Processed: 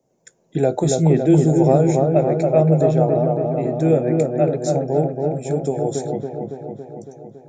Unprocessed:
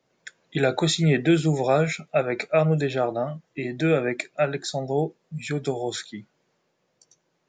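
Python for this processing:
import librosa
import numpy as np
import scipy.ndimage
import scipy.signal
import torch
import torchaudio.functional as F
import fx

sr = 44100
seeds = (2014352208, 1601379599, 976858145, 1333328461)

p1 = fx.band_shelf(x, sr, hz=2300.0, db=-16.0, octaves=2.4)
p2 = p1 + fx.echo_wet_lowpass(p1, sr, ms=279, feedback_pct=67, hz=1600.0, wet_db=-3.0, dry=0)
y = F.gain(torch.from_numpy(p2), 4.5).numpy()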